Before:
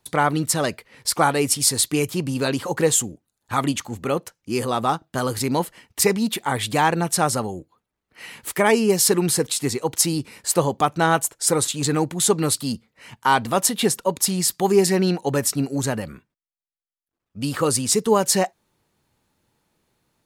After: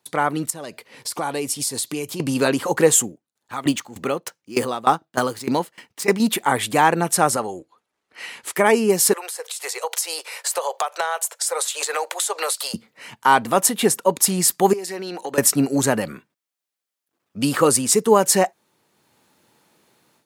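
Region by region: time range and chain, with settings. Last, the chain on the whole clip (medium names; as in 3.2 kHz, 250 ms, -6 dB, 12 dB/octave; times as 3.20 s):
0.50–2.20 s: peaking EQ 1.8 kHz -4 dB 0.76 oct + band-stop 1.3 kHz, Q 14 + compression 3:1, threshold -36 dBFS
3.05–6.20 s: median filter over 3 samples + sawtooth tremolo in dB decaying 3.3 Hz, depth 18 dB
7.36–8.56 s: low-pass 10 kHz + peaking EQ 160 Hz -7.5 dB 1.8 oct
9.13–12.74 s: steep high-pass 490 Hz 48 dB/octave + compression 10:1, threshold -29 dBFS
14.73–15.38 s: high-pass 310 Hz + compression 10:1, threshold -31 dBFS
whole clip: Bessel high-pass 220 Hz, order 2; dynamic bell 4.2 kHz, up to -6 dB, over -38 dBFS, Q 1.2; level rider; trim -1 dB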